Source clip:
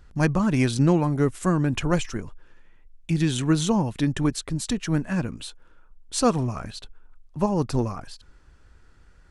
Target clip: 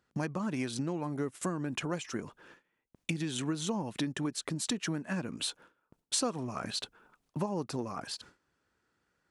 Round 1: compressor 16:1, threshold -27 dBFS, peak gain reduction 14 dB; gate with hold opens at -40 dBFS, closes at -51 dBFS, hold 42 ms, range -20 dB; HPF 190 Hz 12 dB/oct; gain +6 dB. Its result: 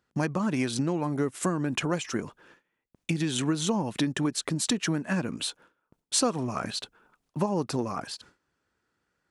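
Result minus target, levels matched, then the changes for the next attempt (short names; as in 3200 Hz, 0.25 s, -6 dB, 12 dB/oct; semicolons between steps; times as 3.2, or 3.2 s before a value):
compressor: peak gain reduction -6.5 dB
change: compressor 16:1, threshold -34 dBFS, peak gain reduction 21 dB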